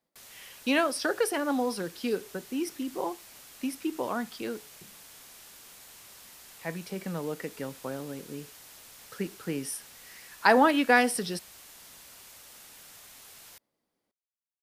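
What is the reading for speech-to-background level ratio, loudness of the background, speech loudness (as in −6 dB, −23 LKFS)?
18.5 dB, −48.0 LKFS, −29.5 LKFS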